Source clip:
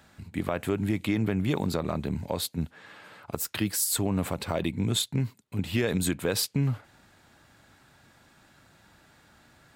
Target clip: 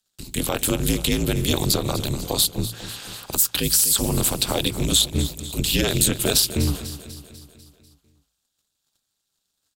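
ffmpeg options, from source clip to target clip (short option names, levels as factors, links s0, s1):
-filter_complex "[0:a]agate=range=0.0178:threshold=0.00224:ratio=16:detection=peak,afreqshift=-54,tremolo=f=220:d=0.974,acrossover=split=2600[s0][s1];[s0]bandreject=f=56.51:t=h:w=4,bandreject=f=113.02:t=h:w=4,bandreject=f=169.53:t=h:w=4[s2];[s1]acompressor=threshold=0.00501:ratio=6[s3];[s2][s3]amix=inputs=2:normalize=0,aexciter=amount=9.2:drive=3.1:freq=3000,asplit=2[s4][s5];[s5]asoftclip=type=tanh:threshold=0.0631,volume=0.355[s6];[s4][s6]amix=inputs=2:normalize=0,aecho=1:1:247|494|741|988|1235|1482:0.2|0.11|0.0604|0.0332|0.0183|0.01,volume=2.11"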